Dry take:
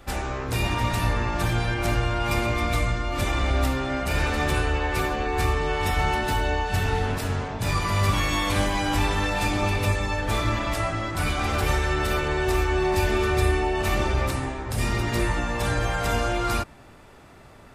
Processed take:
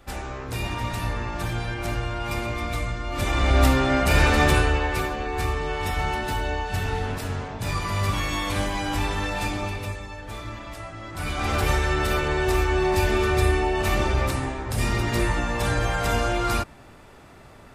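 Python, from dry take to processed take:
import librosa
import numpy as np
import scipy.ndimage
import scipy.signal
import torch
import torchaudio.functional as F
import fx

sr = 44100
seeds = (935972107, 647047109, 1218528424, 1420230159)

y = fx.gain(x, sr, db=fx.line((2.97, -4.0), (3.66, 6.0), (4.44, 6.0), (5.14, -2.5), (9.45, -2.5), (10.09, -11.0), (10.93, -11.0), (11.51, 1.0)))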